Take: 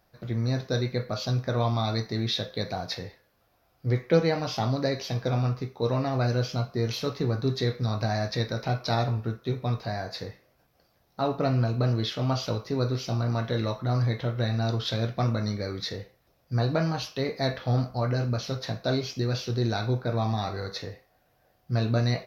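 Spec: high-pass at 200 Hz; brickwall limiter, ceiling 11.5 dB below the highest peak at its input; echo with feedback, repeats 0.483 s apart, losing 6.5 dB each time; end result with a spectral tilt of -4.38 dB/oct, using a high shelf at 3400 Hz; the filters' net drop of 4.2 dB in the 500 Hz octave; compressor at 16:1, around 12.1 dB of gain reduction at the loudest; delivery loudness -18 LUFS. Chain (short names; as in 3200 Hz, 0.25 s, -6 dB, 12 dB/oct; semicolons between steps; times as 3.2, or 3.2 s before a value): HPF 200 Hz; bell 500 Hz -5 dB; high shelf 3400 Hz -3.5 dB; compressor 16:1, threshold -31 dBFS; limiter -31 dBFS; feedback echo 0.483 s, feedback 47%, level -6.5 dB; gain +22.5 dB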